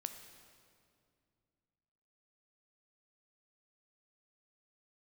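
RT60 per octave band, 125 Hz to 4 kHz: 3.2, 3.0, 2.5, 2.2, 1.9, 1.7 seconds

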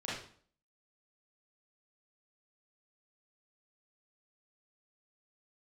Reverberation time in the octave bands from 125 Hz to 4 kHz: 0.55, 0.60, 0.50, 0.50, 0.45, 0.45 seconds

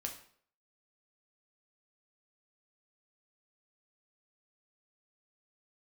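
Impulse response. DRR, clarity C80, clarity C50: 2.0 dB, 12.5 dB, 9.0 dB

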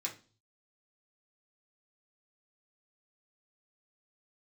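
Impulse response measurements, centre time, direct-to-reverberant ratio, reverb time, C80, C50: 15 ms, −2.5 dB, 0.35 s, 18.5 dB, 12.0 dB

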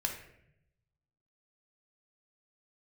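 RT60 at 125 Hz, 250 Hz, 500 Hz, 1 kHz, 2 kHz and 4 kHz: 1.5, 1.1, 0.90, 0.65, 0.75, 0.55 seconds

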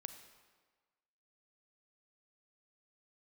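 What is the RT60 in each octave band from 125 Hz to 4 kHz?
1.2, 1.3, 1.4, 1.4, 1.3, 1.1 seconds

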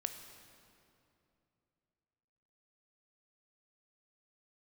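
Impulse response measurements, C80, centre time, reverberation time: 9.0 dB, 34 ms, 2.8 s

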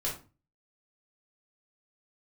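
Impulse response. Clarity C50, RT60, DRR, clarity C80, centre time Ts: 7.0 dB, 0.35 s, −5.0 dB, 13.5 dB, 27 ms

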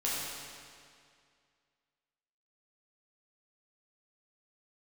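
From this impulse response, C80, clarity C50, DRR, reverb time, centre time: −0.5 dB, −2.5 dB, −7.5 dB, 2.2 s, 140 ms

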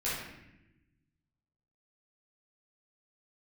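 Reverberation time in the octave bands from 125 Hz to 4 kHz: 1.8, 1.5, 1.0, 0.80, 1.0, 0.70 seconds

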